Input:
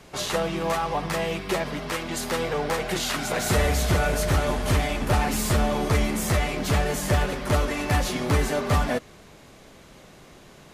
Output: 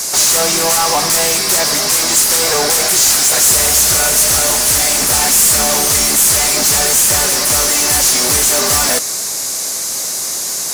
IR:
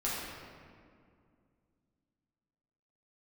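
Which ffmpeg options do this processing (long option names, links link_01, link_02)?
-filter_complex "[0:a]aexciter=amount=14.1:drive=5.9:freq=4700,asplit=2[link_01][link_02];[link_02]highpass=frequency=720:poles=1,volume=28dB,asoftclip=type=tanh:threshold=-4.5dB[link_03];[link_01][link_03]amix=inputs=2:normalize=0,lowpass=frequency=6800:poles=1,volume=-6dB"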